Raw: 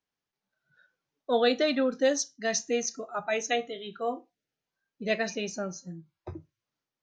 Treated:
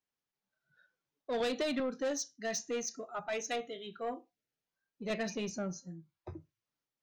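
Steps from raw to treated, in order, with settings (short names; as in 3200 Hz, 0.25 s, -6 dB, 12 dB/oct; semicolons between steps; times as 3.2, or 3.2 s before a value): 5.1–5.8 low shelf 230 Hz +9.5 dB; soft clip -24 dBFS, distortion -11 dB; 1.4–1.8 three-band squash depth 100%; gain -5 dB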